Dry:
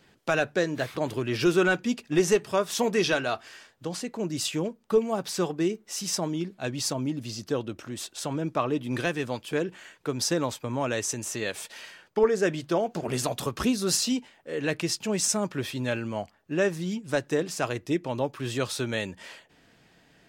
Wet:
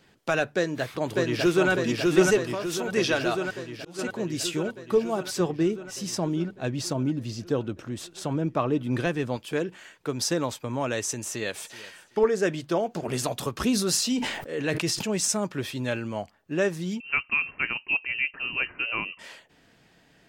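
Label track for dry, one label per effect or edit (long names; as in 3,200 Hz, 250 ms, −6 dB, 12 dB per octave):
0.550000	1.700000	delay throw 600 ms, feedback 70%, level −1.5 dB
2.510000	2.960000	downward compressor 10 to 1, threshold −25 dBFS
3.460000	3.990000	volume swells 307 ms
5.400000	9.370000	spectral tilt −1.5 dB per octave
11.270000	11.820000	delay throw 380 ms, feedback 20%, level −17.5 dB
13.610000	15.180000	level that may fall only so fast at most 49 dB per second
17.000000	19.190000	voice inversion scrambler carrier 2,900 Hz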